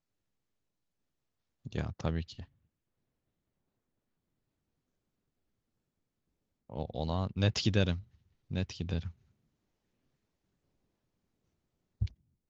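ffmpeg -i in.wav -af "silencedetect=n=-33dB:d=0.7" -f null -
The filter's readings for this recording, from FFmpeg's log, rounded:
silence_start: 0.00
silence_end: 1.67 | silence_duration: 1.67
silence_start: 2.40
silence_end: 6.72 | silence_duration: 4.32
silence_start: 9.08
silence_end: 12.02 | silence_duration: 2.94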